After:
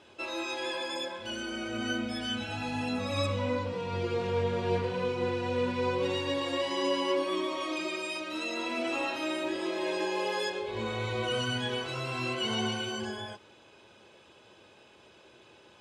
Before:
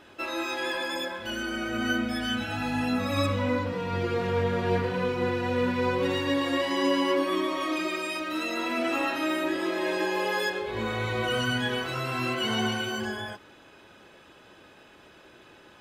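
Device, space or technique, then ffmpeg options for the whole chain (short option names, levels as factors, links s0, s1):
car door speaker: -af "highpass=80,equalizer=f=170:t=q:w=4:g=-6,equalizer=f=280:t=q:w=4:g=-7,equalizer=f=720:t=q:w=4:g=-3,equalizer=f=1300:t=q:w=4:g=-6,equalizer=f=1800:t=q:w=4:g=-8,lowpass=f=9400:w=0.5412,lowpass=f=9400:w=1.3066,volume=0.841"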